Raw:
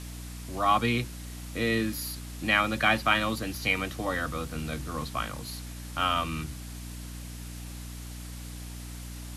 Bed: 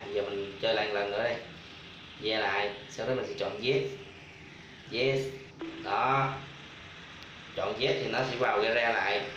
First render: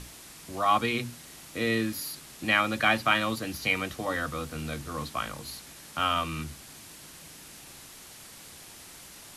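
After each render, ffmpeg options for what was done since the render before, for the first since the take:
-af "bandreject=f=60:t=h:w=6,bandreject=f=120:t=h:w=6,bandreject=f=180:t=h:w=6,bandreject=f=240:t=h:w=6,bandreject=f=300:t=h:w=6"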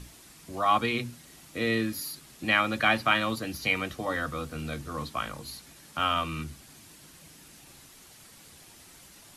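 -af "afftdn=nr=6:nf=-48"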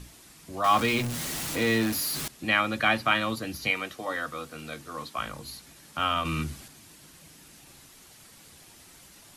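-filter_complex "[0:a]asettb=1/sr,asplit=3[a][b][c];[a]atrim=end=0.644[d];[b]atrim=start=0.64:end=2.28,asetpts=PTS-STARTPTS,afade=t=in:d=0.004:c=qsin,afade=t=out:st=1.636:d=0.004:c=qsin,aeval=exprs='val(0)+0.5*0.0398*sgn(val(0))':c=same[e];[c]atrim=start=2.276[f];[d][e]acrossfade=d=0.004:c1=hsin:c2=qsin[g];[g][f]acrossfade=d=0.004:c1=qsin:c2=hsin,asettb=1/sr,asplit=3[h][i][j];[h]atrim=end=3.714[k];[i]atrim=start=3.71:end=5.19,asetpts=PTS-STARTPTS,afade=t=in:d=0.004:c=qsin,afade=t=out:st=1.476:d=0.004:c=qsin,highpass=f=390:p=1[l];[j]atrim=start=5.186[m];[k][l]acrossfade=d=0.004:c1=hsin:c2=qsin[n];[n][m]acrossfade=d=0.004:c1=qsin:c2=hsin,asettb=1/sr,asplit=3[o][p][q];[o]atrim=end=6.254[r];[p]atrim=start=6.25:end=6.68,asetpts=PTS-STARTPTS,afade=t=in:d=0.004:c=qsin,afade=t=out:st=0.426:d=0.004:c=qsin,acontrast=30[s];[q]atrim=start=6.676[t];[r][s]acrossfade=d=0.004:c1=hsin:c2=qsin[u];[u][t]acrossfade=d=0.004:c1=qsin:c2=hsin"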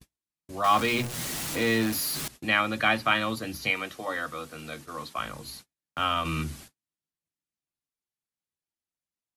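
-af "bandreject=f=60:t=h:w=6,bandreject=f=120:t=h:w=6,bandreject=f=180:t=h:w=6,bandreject=f=240:t=h:w=6,bandreject=f=300:t=h:w=6,agate=range=-45dB:threshold=-45dB:ratio=16:detection=peak"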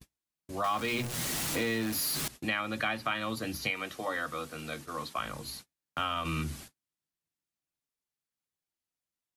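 -af "acompressor=threshold=-29dB:ratio=4"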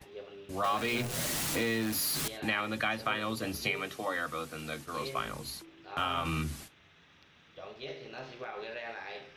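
-filter_complex "[1:a]volume=-14dB[a];[0:a][a]amix=inputs=2:normalize=0"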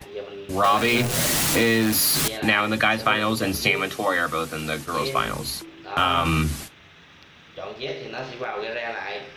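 -af "volume=11.5dB"

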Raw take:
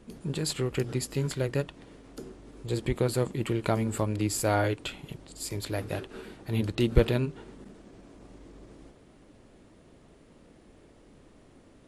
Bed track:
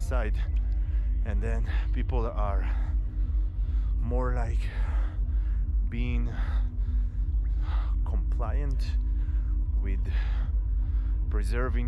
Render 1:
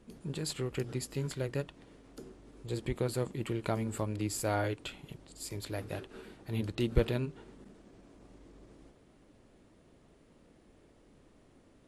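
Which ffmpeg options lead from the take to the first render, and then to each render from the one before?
-af "volume=-6dB"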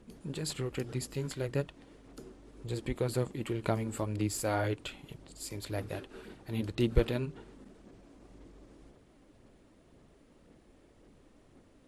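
-af "aphaser=in_gain=1:out_gain=1:delay=3.9:decay=0.29:speed=1.9:type=sinusoidal"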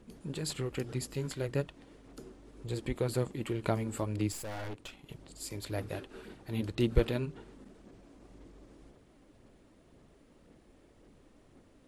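-filter_complex "[0:a]asettb=1/sr,asplit=3[a][b][c];[a]atrim=end=4.324[d];[b]atrim=start=4.32:end=5.09,asetpts=PTS-STARTPTS,afade=t=in:d=0.004:c=qsin,afade=t=out:st=0.766:d=0.004:c=qsin,aeval=exprs='(tanh(79.4*val(0)+0.8)-tanh(0.8))/79.4':c=same[e];[c]atrim=start=5.086[f];[d][e]acrossfade=d=0.004:c1=hsin:c2=qsin[g];[g][f]acrossfade=d=0.004:c1=qsin:c2=hsin"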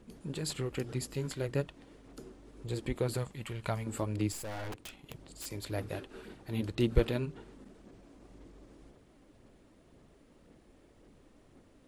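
-filter_complex "[0:a]asettb=1/sr,asplit=3[a][b][c];[a]atrim=end=3.174[d];[b]atrim=start=3.17:end=3.87,asetpts=PTS-STARTPTS,afade=t=in:d=0.004:c=qsin,afade=t=out:st=0.696:d=0.004:c=qsin,equalizer=f=320:t=o:w=1.2:g=-13[e];[c]atrim=start=3.866[f];[d][e]acrossfade=d=0.004:c1=hsin:c2=qsin[g];[g][f]acrossfade=d=0.004:c1=qsin:c2=hsin,asettb=1/sr,asplit=3[h][i][j];[h]atrim=end=4.724[k];[i]atrim=start=4.72:end=5.46,asetpts=PTS-STARTPTS,afade=t=in:d=0.004:c=qsin,afade=t=out:st=0.736:d=0.004:c=qsin,aeval=exprs='(mod(59.6*val(0)+1,2)-1)/59.6':c=same[l];[j]atrim=start=5.456[m];[k][l]acrossfade=d=0.004:c1=hsin:c2=qsin[n];[n][m]acrossfade=d=0.004:c1=qsin:c2=hsin"

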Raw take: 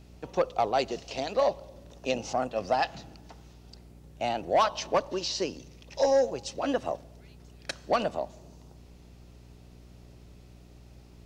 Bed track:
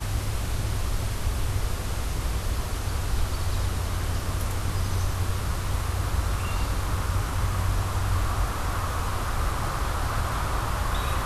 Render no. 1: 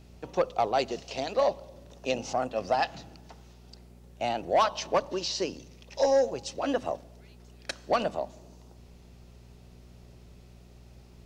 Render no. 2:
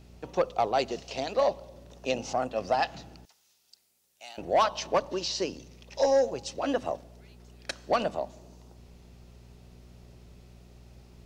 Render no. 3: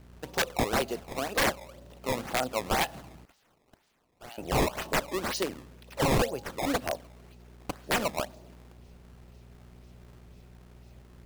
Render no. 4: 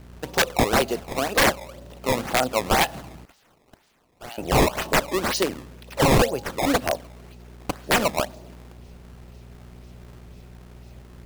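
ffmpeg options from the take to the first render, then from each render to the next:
-af "bandreject=f=50:t=h:w=4,bandreject=f=100:t=h:w=4,bandreject=f=150:t=h:w=4,bandreject=f=200:t=h:w=4,bandreject=f=250:t=h:w=4,bandreject=f=300:t=h:w=4"
-filter_complex "[0:a]asettb=1/sr,asplit=3[a][b][c];[a]atrim=end=3.254[d];[b]atrim=start=3.25:end=4.38,asetpts=PTS-STARTPTS,afade=t=in:d=0.004:c=qsin,afade=t=out:st=1.126:d=0.004:c=qsin,aderivative[e];[c]atrim=start=4.376[f];[d][e]acrossfade=d=0.004:c1=hsin:c2=qsin[g];[g][f]acrossfade=d=0.004:c1=qsin:c2=hsin"
-af "acrusher=samples=17:mix=1:aa=0.000001:lfo=1:lforange=27.2:lforate=2,aeval=exprs='(mod(9.44*val(0)+1,2)-1)/9.44':c=same"
-af "volume=7.5dB"

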